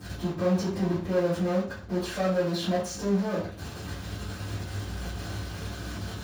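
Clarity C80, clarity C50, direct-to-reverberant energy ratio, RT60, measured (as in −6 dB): 10.5 dB, 4.5 dB, −16.0 dB, 0.45 s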